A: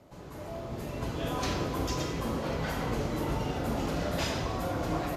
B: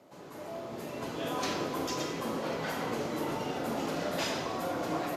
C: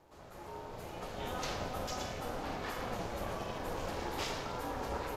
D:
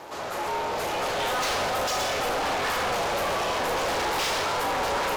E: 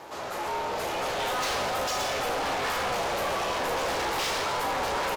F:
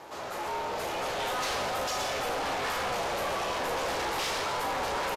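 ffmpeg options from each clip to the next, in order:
ffmpeg -i in.wav -af "highpass=220" out.wav
ffmpeg -i in.wav -af "aeval=exprs='val(0)*sin(2*PI*250*n/s)':channel_layout=same,volume=-2dB" out.wav
ffmpeg -i in.wav -filter_complex "[0:a]asplit=2[link_01][link_02];[link_02]highpass=frequency=720:poles=1,volume=28dB,asoftclip=type=tanh:threshold=-23.5dB[link_03];[link_01][link_03]amix=inputs=2:normalize=0,lowpass=frequency=7600:poles=1,volume=-6dB,volume=4dB" out.wav
ffmpeg -i in.wav -filter_complex "[0:a]asplit=2[link_01][link_02];[link_02]adelay=15,volume=-11dB[link_03];[link_01][link_03]amix=inputs=2:normalize=0,volume=-2.5dB" out.wav
ffmpeg -i in.wav -af "aresample=32000,aresample=44100,volume=-2.5dB" out.wav

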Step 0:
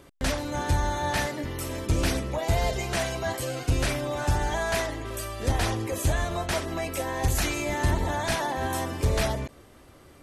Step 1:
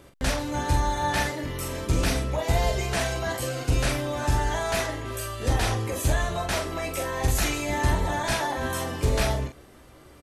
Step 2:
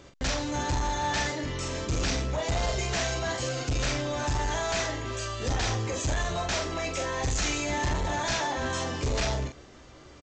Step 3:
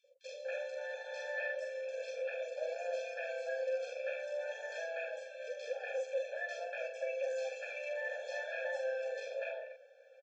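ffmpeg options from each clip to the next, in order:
ffmpeg -i in.wav -af "aecho=1:1:16|44:0.422|0.501" out.wav
ffmpeg -i in.wav -af "highshelf=frequency=4400:gain=8,aresample=16000,asoftclip=type=tanh:threshold=-23.5dB,aresample=44100" out.wav
ffmpeg -i in.wav -filter_complex "[0:a]asplit=3[link_01][link_02][link_03];[link_01]bandpass=frequency=530:width_type=q:width=8,volume=0dB[link_04];[link_02]bandpass=frequency=1840:width_type=q:width=8,volume=-6dB[link_05];[link_03]bandpass=frequency=2480:width_type=q:width=8,volume=-9dB[link_06];[link_04][link_05][link_06]amix=inputs=3:normalize=0,acrossover=split=460|3100[link_07][link_08][link_09];[link_07]adelay=40[link_10];[link_08]adelay=240[link_11];[link_10][link_11][link_09]amix=inputs=3:normalize=0,afftfilt=real='re*eq(mod(floor(b*sr/1024/450),2),1)':imag='im*eq(mod(floor(b*sr/1024/450),2),1)':win_size=1024:overlap=0.75,volume=5dB" out.wav

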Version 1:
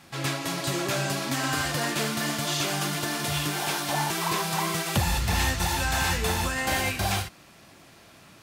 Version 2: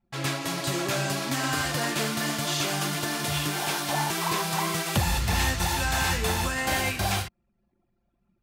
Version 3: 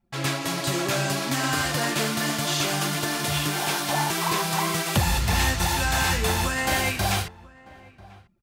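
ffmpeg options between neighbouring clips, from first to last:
ffmpeg -i in.wav -af "anlmdn=0.398" out.wav
ffmpeg -i in.wav -filter_complex "[0:a]asplit=2[link_01][link_02];[link_02]adelay=991.3,volume=-21dB,highshelf=frequency=4000:gain=-22.3[link_03];[link_01][link_03]amix=inputs=2:normalize=0,volume=2.5dB" out.wav

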